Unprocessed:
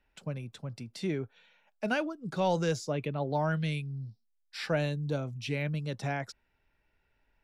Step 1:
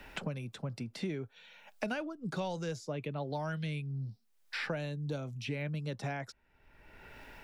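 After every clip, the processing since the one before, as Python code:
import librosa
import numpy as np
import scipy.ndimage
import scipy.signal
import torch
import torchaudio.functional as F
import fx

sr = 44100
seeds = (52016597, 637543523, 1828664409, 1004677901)

y = fx.band_squash(x, sr, depth_pct=100)
y = y * 10.0 ** (-5.5 / 20.0)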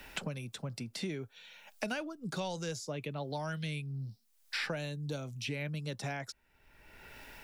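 y = fx.high_shelf(x, sr, hz=3600.0, db=11.0)
y = y * 10.0 ** (-1.5 / 20.0)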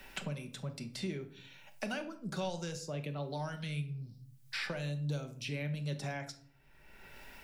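y = fx.room_shoebox(x, sr, seeds[0], volume_m3=770.0, walls='furnished', distance_m=1.1)
y = y * 10.0 ** (-3.0 / 20.0)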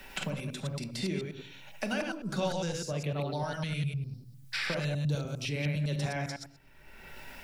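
y = fx.reverse_delay(x, sr, ms=101, wet_db=-3)
y = y * 10.0 ** (4.0 / 20.0)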